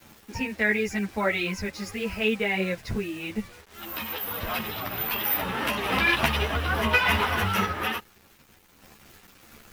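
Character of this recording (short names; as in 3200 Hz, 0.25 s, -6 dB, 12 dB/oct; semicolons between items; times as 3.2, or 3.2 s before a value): a quantiser's noise floor 8-bit, dither none; random-step tremolo 1.7 Hz; a shimmering, thickened sound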